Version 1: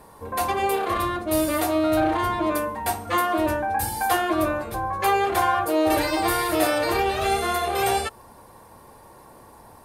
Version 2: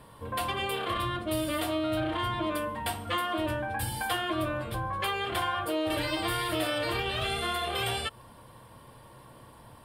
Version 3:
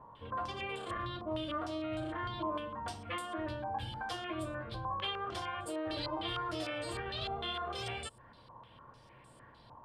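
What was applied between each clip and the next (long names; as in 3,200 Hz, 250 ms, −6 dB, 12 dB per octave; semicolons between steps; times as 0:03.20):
thirty-one-band graphic EQ 125 Hz +10 dB, 400 Hz −6 dB, 800 Hz −8 dB, 3,150 Hz +11 dB, 6,300 Hz −11 dB, 12,500 Hz −7 dB; downward compressor 2.5 to 1, threshold −26 dBFS, peak gain reduction 6.5 dB; level −2.5 dB
dynamic equaliser 2,100 Hz, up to −7 dB, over −46 dBFS, Q 0.75; low-pass on a step sequencer 6.6 Hz 970–7,800 Hz; level −8 dB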